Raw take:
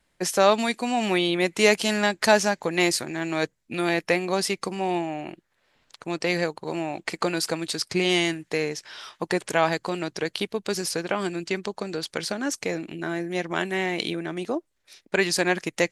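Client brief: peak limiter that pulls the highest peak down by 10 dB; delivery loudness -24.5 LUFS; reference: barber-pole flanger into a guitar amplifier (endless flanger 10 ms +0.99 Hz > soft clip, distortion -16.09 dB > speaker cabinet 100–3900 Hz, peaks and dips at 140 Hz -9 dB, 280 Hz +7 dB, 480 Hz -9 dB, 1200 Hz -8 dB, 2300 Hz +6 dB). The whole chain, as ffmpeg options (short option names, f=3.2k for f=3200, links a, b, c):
-filter_complex "[0:a]alimiter=limit=-13.5dB:level=0:latency=1,asplit=2[a][b];[b]adelay=10,afreqshift=0.99[c];[a][c]amix=inputs=2:normalize=1,asoftclip=threshold=-22.5dB,highpass=100,equalizer=f=140:t=q:w=4:g=-9,equalizer=f=280:t=q:w=4:g=7,equalizer=f=480:t=q:w=4:g=-9,equalizer=f=1.2k:t=q:w=4:g=-8,equalizer=f=2.3k:t=q:w=4:g=6,lowpass=f=3.9k:w=0.5412,lowpass=f=3.9k:w=1.3066,volume=8dB"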